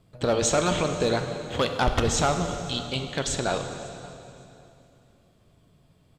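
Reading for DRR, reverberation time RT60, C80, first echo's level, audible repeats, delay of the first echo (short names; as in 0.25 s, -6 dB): 5.5 dB, 2.9 s, 7.5 dB, -22.0 dB, 1, 0.554 s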